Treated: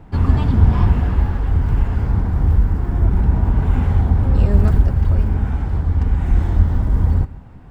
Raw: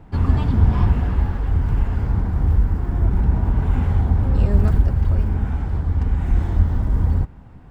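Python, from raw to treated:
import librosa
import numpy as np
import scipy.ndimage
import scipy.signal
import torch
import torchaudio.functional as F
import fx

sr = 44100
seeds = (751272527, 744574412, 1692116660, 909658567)

y = x + 10.0 ** (-19.5 / 20.0) * np.pad(x, (int(137 * sr / 1000.0), 0))[:len(x)]
y = F.gain(torch.from_numpy(y), 2.5).numpy()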